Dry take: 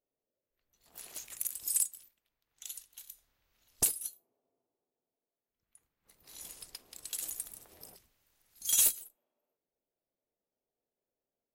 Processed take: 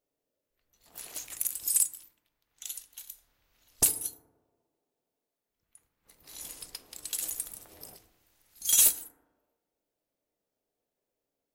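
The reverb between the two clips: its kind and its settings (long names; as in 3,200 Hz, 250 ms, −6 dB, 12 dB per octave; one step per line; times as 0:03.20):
feedback delay network reverb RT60 1.1 s, low-frequency decay 1.05×, high-frequency decay 0.3×, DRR 11 dB
level +4.5 dB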